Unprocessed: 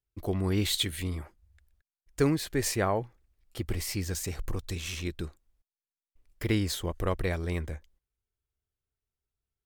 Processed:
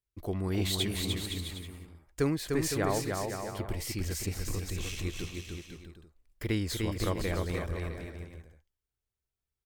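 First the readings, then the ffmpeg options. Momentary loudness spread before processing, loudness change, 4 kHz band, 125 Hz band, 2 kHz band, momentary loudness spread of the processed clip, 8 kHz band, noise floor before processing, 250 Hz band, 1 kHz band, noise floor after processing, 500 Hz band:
14 LU, -2.0 dB, -1.5 dB, -1.0 dB, -1.5 dB, 16 LU, -1.5 dB, under -85 dBFS, -1.0 dB, -1.5 dB, under -85 dBFS, -1.0 dB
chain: -af "aecho=1:1:300|510|657|759.9|831.9:0.631|0.398|0.251|0.158|0.1,volume=-3.5dB"

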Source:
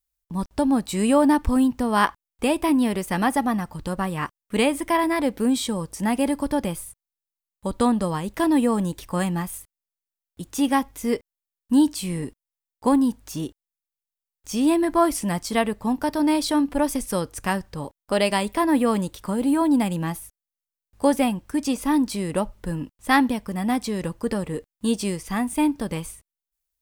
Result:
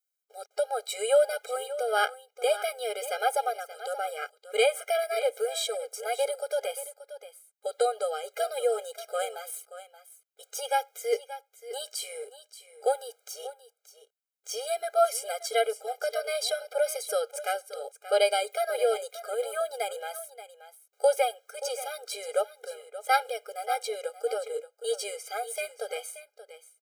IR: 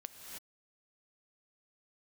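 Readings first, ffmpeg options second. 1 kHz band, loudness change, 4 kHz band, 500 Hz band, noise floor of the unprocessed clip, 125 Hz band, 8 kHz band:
-5.0 dB, -6.5 dB, -2.0 dB, -0.5 dB, under -85 dBFS, under -40 dB, -3.0 dB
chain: -af "aecho=1:1:579:0.2,afftfilt=real='re*eq(mod(floor(b*sr/1024/410),2),1)':imag='im*eq(mod(floor(b*sr/1024/410),2),1)':win_size=1024:overlap=0.75"

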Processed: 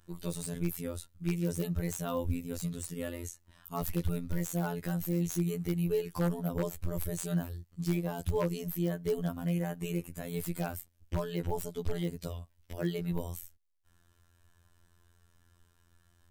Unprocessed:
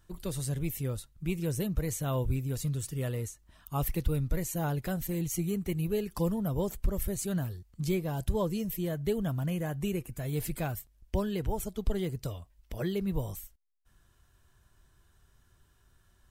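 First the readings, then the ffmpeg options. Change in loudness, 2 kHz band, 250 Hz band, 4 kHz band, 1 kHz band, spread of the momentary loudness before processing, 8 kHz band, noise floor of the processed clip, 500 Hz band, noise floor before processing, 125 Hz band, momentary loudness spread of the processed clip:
-1.5 dB, -1.0 dB, -1.0 dB, -2.0 dB, -1.5 dB, 6 LU, -2.5 dB, -68 dBFS, -1.0 dB, -66 dBFS, -2.5 dB, 8 LU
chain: -af "afftfilt=real='hypot(re,im)*cos(PI*b)':imag='0':win_size=2048:overlap=0.75,aeval=exprs='0.075*(abs(mod(val(0)/0.075+3,4)-2)-1)':c=same,volume=2.5dB"

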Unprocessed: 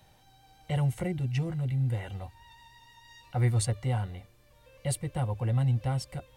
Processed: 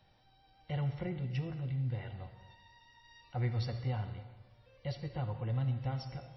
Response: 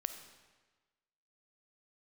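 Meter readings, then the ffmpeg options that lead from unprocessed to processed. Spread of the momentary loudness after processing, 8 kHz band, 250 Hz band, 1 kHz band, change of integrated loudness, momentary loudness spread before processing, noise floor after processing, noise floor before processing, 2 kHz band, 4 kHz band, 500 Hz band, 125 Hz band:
12 LU, under -25 dB, -6.5 dB, -6.5 dB, -7.0 dB, 12 LU, -66 dBFS, -61 dBFS, -6.5 dB, -6.5 dB, -6.5 dB, -7.0 dB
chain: -filter_complex "[1:a]atrim=start_sample=2205[a];[0:a][a]afir=irnorm=-1:irlink=0,volume=-5.5dB" -ar 22050 -c:a libmp3lame -b:a 24k

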